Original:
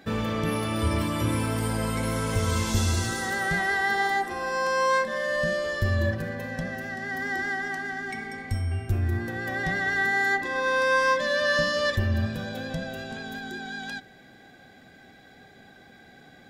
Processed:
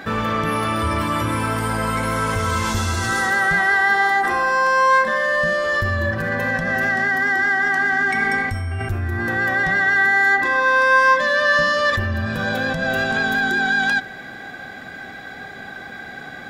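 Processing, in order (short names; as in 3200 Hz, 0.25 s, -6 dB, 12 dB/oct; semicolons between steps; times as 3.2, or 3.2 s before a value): in parallel at +1 dB: negative-ratio compressor -36 dBFS, ratio -1; on the sum: bell 1300 Hz +10 dB 1.5 oct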